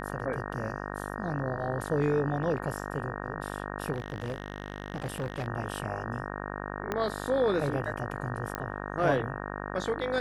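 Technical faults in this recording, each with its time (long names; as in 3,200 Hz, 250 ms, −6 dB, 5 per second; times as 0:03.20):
mains buzz 50 Hz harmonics 37 −37 dBFS
0:03.94–0:05.48: clipping −28.5 dBFS
0:06.92: click −16 dBFS
0:08.55: click −17 dBFS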